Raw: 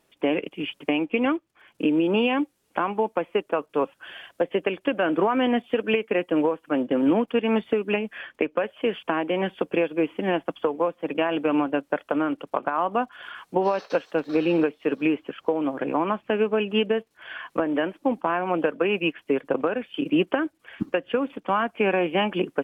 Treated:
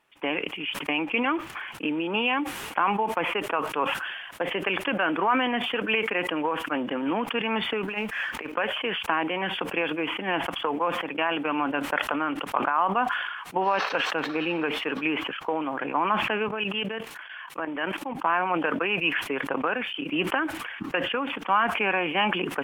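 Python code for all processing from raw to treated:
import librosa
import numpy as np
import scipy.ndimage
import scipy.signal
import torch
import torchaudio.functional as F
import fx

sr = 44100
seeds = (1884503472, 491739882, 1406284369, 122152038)

y = fx.chain(x, sr, fx.law_mismatch(coded='mu'),
    fx.over_compress(threshold_db=-26.0, ratio=-0.5), at=(7.83, 8.52))
y = fx.chain(y, sr, fx.level_steps(step_db=13),
    fx.high_shelf(hz=3600.0, db=5.5),
    fx.band_widen(depth_pct=40), at=(16.48, 18.16))
y = fx.band_shelf(y, sr, hz=1600.0, db=10.5, octaves=2.3)
y = fx.sustainer(y, sr, db_per_s=39.0)
y = y * librosa.db_to_amplitude(-8.0)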